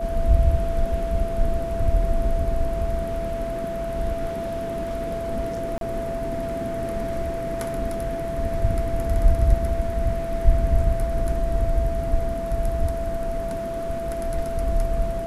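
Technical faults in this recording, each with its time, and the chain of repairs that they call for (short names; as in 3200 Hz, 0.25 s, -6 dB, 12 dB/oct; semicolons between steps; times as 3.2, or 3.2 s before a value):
tone 670 Hz -27 dBFS
5.78–5.81 gap 32 ms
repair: notch 670 Hz, Q 30; interpolate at 5.78, 32 ms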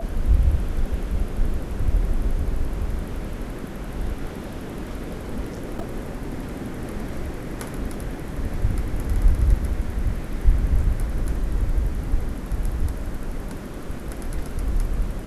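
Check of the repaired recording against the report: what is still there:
none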